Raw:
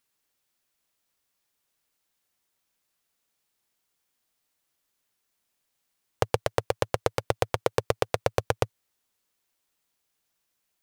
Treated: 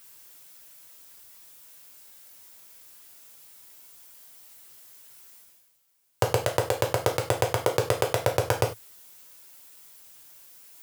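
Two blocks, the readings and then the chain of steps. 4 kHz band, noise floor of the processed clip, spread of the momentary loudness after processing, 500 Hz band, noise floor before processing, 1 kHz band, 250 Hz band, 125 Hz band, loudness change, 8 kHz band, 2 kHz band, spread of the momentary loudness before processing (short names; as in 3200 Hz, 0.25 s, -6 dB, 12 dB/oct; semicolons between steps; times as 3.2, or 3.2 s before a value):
+3.5 dB, -63 dBFS, 3 LU, +2.0 dB, -78 dBFS, +2.0 dB, +2.0 dB, +4.0 dB, +2.5 dB, +6.5 dB, +2.5 dB, 3 LU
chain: tracing distortion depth 0.036 ms; reverse; upward compressor, threshold -43 dBFS; reverse; HPF 86 Hz; high shelf 8200 Hz +10 dB; non-linear reverb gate 0.12 s falling, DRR 0.5 dB; gain -1 dB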